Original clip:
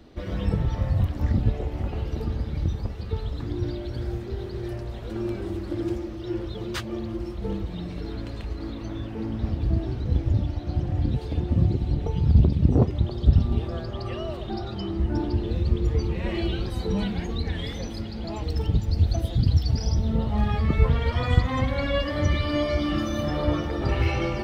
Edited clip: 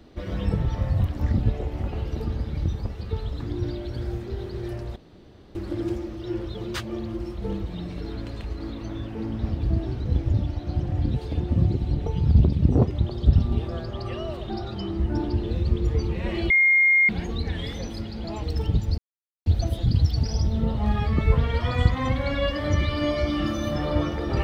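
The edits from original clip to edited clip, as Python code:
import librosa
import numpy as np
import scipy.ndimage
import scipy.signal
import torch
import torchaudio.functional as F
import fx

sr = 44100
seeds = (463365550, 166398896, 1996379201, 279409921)

y = fx.edit(x, sr, fx.room_tone_fill(start_s=4.96, length_s=0.59),
    fx.bleep(start_s=16.5, length_s=0.59, hz=2130.0, db=-14.5),
    fx.insert_silence(at_s=18.98, length_s=0.48), tone=tone)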